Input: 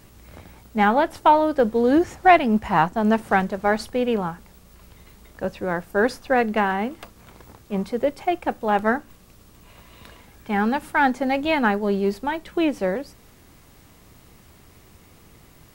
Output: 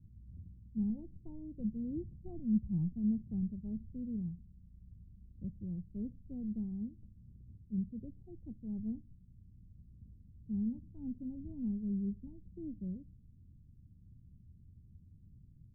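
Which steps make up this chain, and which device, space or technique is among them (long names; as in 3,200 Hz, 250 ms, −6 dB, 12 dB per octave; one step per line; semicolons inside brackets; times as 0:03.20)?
the neighbour's flat through the wall (low-pass filter 200 Hz 24 dB per octave; parametric band 92 Hz +5 dB 0.83 octaves)
0:00.89–0:02.93: comb filter 5.6 ms, depth 36%
level −7 dB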